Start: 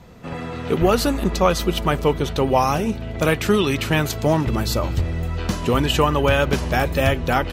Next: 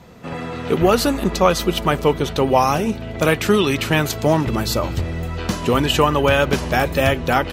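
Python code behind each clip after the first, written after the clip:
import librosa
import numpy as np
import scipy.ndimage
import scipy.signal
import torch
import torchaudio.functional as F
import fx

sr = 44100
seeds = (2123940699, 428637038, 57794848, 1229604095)

y = fx.low_shelf(x, sr, hz=70.0, db=-10.0)
y = F.gain(torch.from_numpy(y), 2.5).numpy()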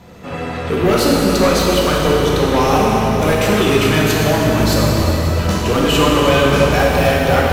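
y = 10.0 ** (-14.5 / 20.0) * np.tanh(x / 10.0 ** (-14.5 / 20.0))
y = fx.rev_plate(y, sr, seeds[0], rt60_s=4.1, hf_ratio=0.8, predelay_ms=0, drr_db=-4.5)
y = F.gain(torch.from_numpy(y), 1.5).numpy()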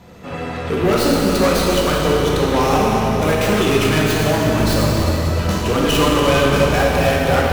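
y = fx.tracing_dist(x, sr, depth_ms=0.13)
y = F.gain(torch.from_numpy(y), -2.0).numpy()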